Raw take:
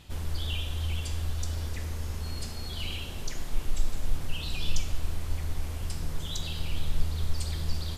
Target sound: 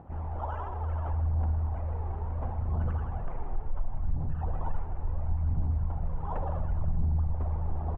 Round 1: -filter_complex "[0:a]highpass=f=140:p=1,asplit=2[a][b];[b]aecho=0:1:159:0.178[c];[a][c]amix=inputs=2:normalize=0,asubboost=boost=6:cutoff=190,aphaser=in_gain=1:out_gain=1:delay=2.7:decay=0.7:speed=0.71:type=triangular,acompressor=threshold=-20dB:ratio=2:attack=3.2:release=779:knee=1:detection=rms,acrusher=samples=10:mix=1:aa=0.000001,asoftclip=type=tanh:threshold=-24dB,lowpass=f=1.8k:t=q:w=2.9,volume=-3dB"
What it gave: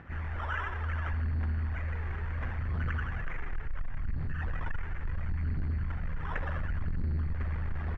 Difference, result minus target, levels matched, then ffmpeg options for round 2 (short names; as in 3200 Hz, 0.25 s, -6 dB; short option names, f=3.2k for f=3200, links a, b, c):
2000 Hz band +18.0 dB; soft clip: distortion +9 dB
-filter_complex "[0:a]highpass=f=140:p=1,asplit=2[a][b];[b]aecho=0:1:159:0.178[c];[a][c]amix=inputs=2:normalize=0,asubboost=boost=6:cutoff=190,aphaser=in_gain=1:out_gain=1:delay=2.7:decay=0.7:speed=0.71:type=triangular,acompressor=threshold=-20dB:ratio=2:attack=3.2:release=779:knee=1:detection=rms,acrusher=samples=10:mix=1:aa=0.000001,asoftclip=type=tanh:threshold=-16dB,lowpass=f=820:t=q:w=2.9,volume=-3dB"